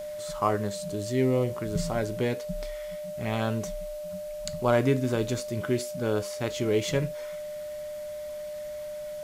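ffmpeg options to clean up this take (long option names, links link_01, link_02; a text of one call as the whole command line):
ffmpeg -i in.wav -af "adeclick=threshold=4,bandreject=frequency=600:width=30,afwtdn=0.0022" out.wav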